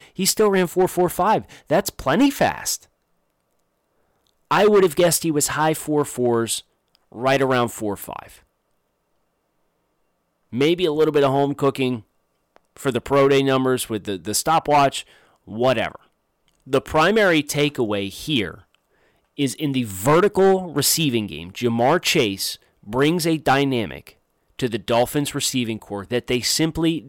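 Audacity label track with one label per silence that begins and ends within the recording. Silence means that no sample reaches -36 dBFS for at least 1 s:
2.840000	4.510000	silence
8.360000	10.530000	silence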